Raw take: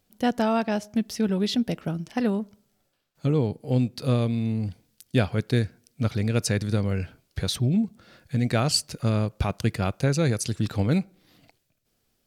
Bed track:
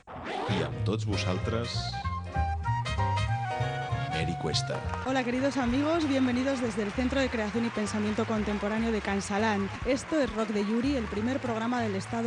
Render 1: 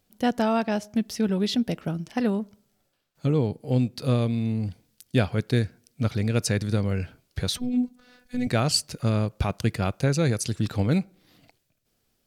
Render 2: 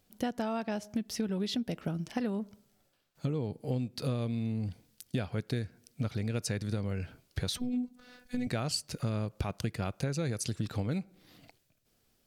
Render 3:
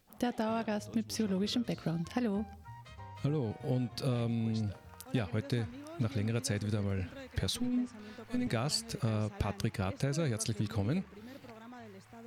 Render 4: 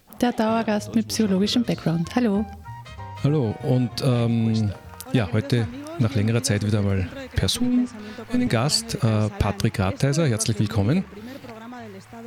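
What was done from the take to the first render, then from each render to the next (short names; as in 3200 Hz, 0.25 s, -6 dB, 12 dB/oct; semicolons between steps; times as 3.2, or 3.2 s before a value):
7.57–8.47 robotiser 248 Hz
compressor 6:1, threshold -30 dBFS, peak gain reduction 13.5 dB
add bed track -20.5 dB
gain +12 dB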